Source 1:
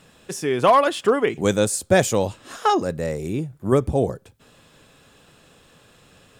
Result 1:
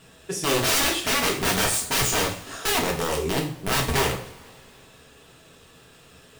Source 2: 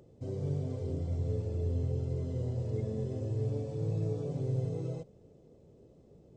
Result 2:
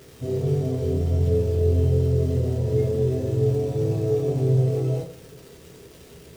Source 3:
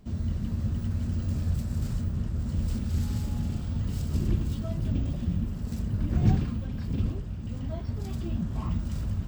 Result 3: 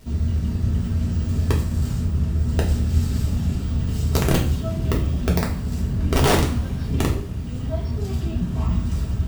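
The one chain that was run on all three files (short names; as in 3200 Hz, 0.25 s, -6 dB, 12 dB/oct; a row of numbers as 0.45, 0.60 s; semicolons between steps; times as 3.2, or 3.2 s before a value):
wrapped overs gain 18 dB; crackle 500/s -47 dBFS; two-slope reverb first 0.4 s, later 2.3 s, from -22 dB, DRR -2 dB; match loudness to -23 LUFS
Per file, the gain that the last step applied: -2.5, +6.5, +3.5 dB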